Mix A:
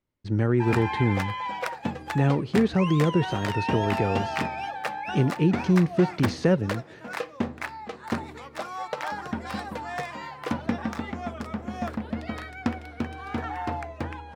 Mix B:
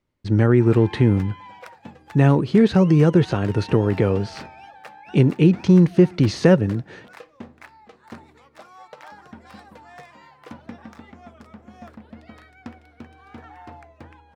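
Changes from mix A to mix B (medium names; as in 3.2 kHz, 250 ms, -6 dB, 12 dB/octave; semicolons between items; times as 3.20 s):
speech +7.0 dB; background -11.0 dB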